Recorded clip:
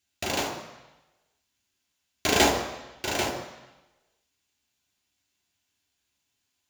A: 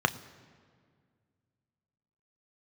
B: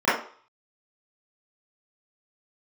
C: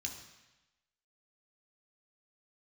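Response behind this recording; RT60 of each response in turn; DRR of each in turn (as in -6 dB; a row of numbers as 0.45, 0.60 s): C; 2.0, 0.45, 1.0 s; 9.5, -14.5, 0.5 dB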